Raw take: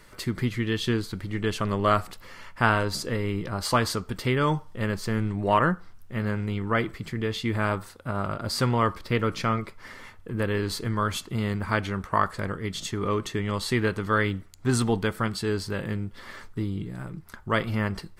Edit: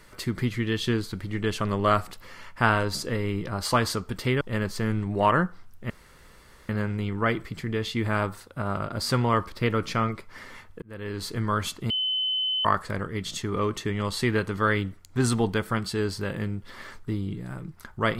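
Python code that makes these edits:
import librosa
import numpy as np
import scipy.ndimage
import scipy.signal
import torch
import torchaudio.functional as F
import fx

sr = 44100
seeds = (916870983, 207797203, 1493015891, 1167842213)

y = fx.edit(x, sr, fx.cut(start_s=4.41, length_s=0.28),
    fx.insert_room_tone(at_s=6.18, length_s=0.79),
    fx.fade_in_span(start_s=10.31, length_s=0.58),
    fx.bleep(start_s=11.39, length_s=0.75, hz=3040.0, db=-23.5), tone=tone)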